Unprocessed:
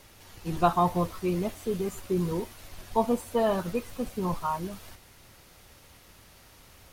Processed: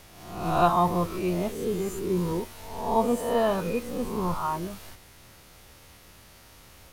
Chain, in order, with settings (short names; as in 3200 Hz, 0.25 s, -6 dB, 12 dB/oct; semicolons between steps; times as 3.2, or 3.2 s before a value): spectral swells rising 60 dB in 0.79 s